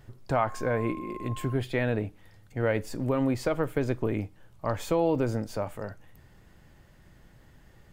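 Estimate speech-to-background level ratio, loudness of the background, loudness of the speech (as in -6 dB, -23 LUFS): 14.0 dB, -44.0 LUFS, -30.0 LUFS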